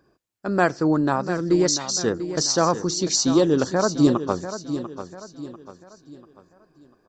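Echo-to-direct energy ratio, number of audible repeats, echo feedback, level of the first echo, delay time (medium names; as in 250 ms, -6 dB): -10.5 dB, 3, 39%, -11.0 dB, 693 ms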